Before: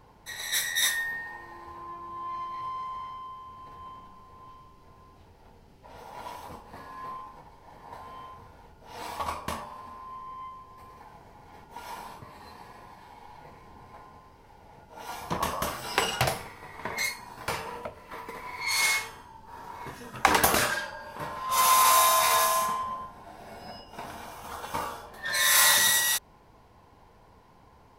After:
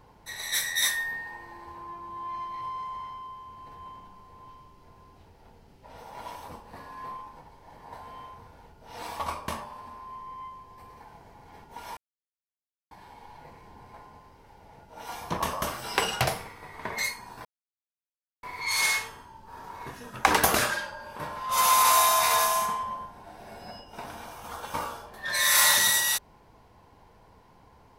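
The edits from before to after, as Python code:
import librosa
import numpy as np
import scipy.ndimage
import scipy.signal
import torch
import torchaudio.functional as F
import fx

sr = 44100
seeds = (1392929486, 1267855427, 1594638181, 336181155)

y = fx.edit(x, sr, fx.silence(start_s=11.97, length_s=0.94),
    fx.silence(start_s=17.45, length_s=0.98), tone=tone)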